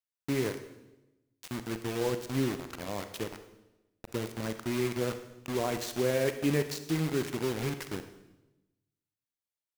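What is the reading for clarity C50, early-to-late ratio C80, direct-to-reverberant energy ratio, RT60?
10.5 dB, 12.5 dB, 8.5 dB, 1.0 s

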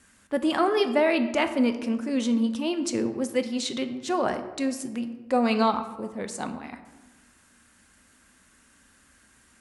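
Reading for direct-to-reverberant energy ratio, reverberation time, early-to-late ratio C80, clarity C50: 8.0 dB, 1.2 s, 12.5 dB, 11.0 dB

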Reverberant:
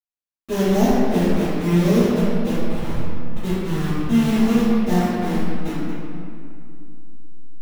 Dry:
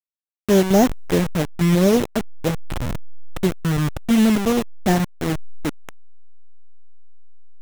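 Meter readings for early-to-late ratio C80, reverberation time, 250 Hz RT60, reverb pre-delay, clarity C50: -1.5 dB, 2.5 s, 3.5 s, 4 ms, -4.5 dB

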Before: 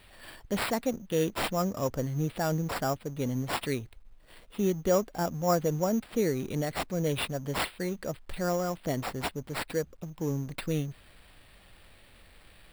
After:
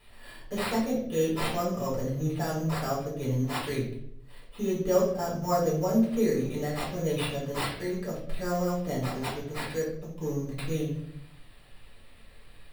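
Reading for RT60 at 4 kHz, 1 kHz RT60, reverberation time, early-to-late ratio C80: 0.50 s, 0.55 s, 0.70 s, 8.5 dB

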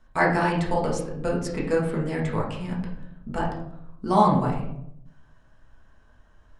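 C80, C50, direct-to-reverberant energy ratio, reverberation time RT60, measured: 8.0 dB, 5.0 dB, -4.0 dB, 0.75 s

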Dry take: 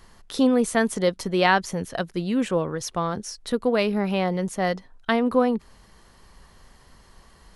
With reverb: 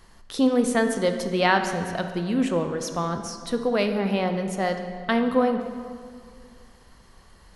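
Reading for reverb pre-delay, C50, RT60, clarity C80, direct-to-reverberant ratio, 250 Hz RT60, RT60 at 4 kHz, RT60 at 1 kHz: 17 ms, 7.5 dB, 2.1 s, 8.5 dB, 6.0 dB, 2.2 s, 1.4 s, 2.0 s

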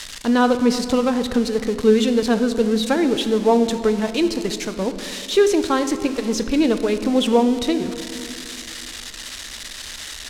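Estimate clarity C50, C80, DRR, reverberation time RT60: 10.5 dB, 11.5 dB, 9.0 dB, 2.6 s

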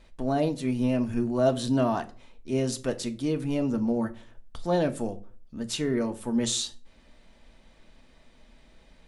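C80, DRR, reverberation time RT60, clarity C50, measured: 23.0 dB, 7.5 dB, 0.40 s, 17.5 dB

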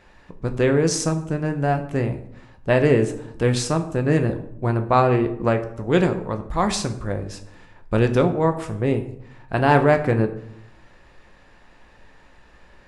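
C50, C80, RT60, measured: 12.5 dB, 15.0 dB, 0.75 s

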